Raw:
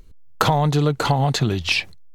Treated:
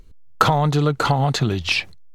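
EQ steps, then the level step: dynamic bell 1.3 kHz, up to +6 dB, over -39 dBFS, Q 4.4; treble shelf 10 kHz -4.5 dB; 0.0 dB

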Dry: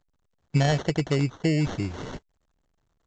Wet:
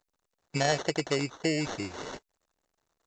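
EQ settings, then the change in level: tone controls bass -14 dB, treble +4 dB; band-stop 3.2 kHz, Q 14; 0.0 dB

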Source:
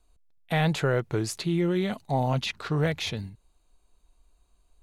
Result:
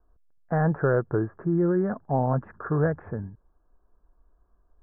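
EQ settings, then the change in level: rippled Chebyshev low-pass 1.7 kHz, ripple 3 dB; +3.5 dB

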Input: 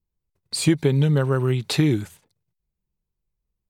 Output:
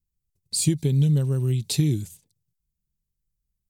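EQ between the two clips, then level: FFT filter 150 Hz 0 dB, 1.4 kHz -21 dB, 2.6 kHz -9 dB, 7 kHz +4 dB; 0.0 dB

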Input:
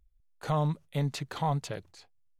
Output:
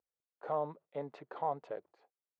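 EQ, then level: ladder band-pass 630 Hz, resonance 25%; +8.0 dB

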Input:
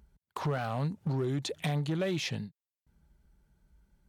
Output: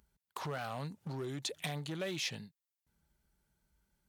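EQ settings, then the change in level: tilt EQ +2 dB/octave; -5.0 dB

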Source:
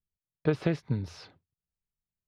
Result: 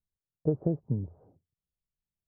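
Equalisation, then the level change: inverse Chebyshev low-pass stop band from 4 kHz, stop band 80 dB; distance through air 450 m; 0.0 dB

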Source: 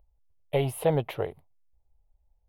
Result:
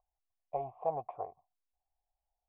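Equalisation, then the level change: cascade formant filter a; +5.0 dB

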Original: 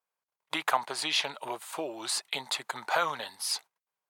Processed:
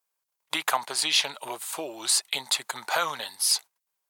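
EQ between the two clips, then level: treble shelf 3.7 kHz +11.5 dB; 0.0 dB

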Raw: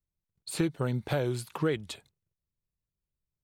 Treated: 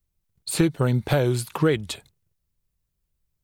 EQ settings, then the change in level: bass shelf 72 Hz +7.5 dB; treble shelf 9 kHz +5 dB; +7.5 dB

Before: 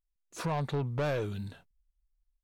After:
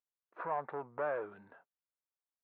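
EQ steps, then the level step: high-pass 620 Hz 12 dB/octave; low-pass 1.6 kHz 24 dB/octave; distance through air 70 m; +1.0 dB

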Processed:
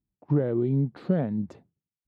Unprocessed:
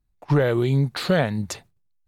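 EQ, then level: band-pass filter 240 Hz, Q 1.3; 0.0 dB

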